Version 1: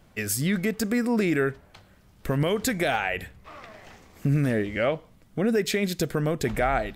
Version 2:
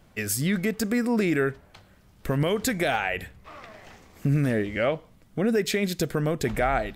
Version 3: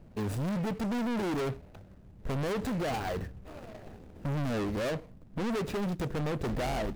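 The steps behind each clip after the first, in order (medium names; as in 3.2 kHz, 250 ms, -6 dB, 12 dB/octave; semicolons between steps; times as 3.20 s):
no audible change
median filter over 41 samples; overload inside the chain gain 34.5 dB; trim +4.5 dB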